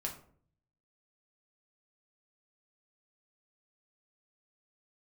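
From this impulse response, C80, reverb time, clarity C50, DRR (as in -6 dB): 13.5 dB, 0.55 s, 9.0 dB, -0.5 dB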